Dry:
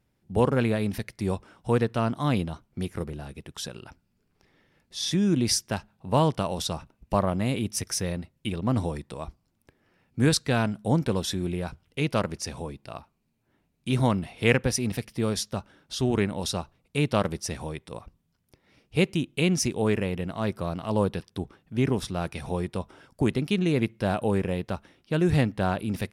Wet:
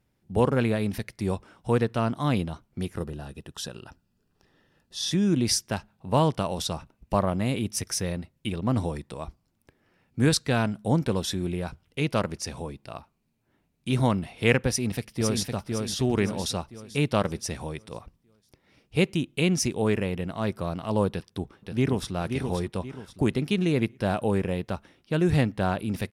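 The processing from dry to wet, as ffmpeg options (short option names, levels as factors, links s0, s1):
-filter_complex "[0:a]asettb=1/sr,asplit=3[s0][s1][s2];[s0]atrim=end=2.954[s3];[s1]atrim=start=2.95:end=5.11,asetpts=PTS-STARTPTS,afade=t=in:d=0.004:c=qsin,afade=t=out:st=2.156:d=0.004:c=qsin,asuperstop=centerf=2200:order=4:qfactor=5.8[s4];[s2]atrim=start=5.106[s5];[s3][s4]acrossfade=d=0.004:c1=hsin:c2=qsin[s6];[s6][s5]acrossfade=d=0.004:c1=qsin:c2=hsin,asplit=2[s7][s8];[s8]afade=t=in:st=14.69:d=0.01,afade=t=out:st=15.51:d=0.01,aecho=0:1:510|1020|1530|2040|2550|3060:0.668344|0.300755|0.13534|0.0609028|0.0274063|0.0123328[s9];[s7][s9]amix=inputs=2:normalize=0,asplit=2[s10][s11];[s11]afade=t=in:st=21.09:d=0.01,afade=t=out:st=22.14:d=0.01,aecho=0:1:530|1060|1590|2120:0.501187|0.175416|0.0613954|0.0214884[s12];[s10][s12]amix=inputs=2:normalize=0"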